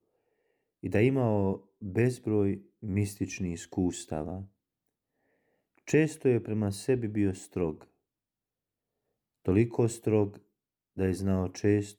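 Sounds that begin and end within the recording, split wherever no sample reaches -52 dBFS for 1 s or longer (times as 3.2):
5.78–7.85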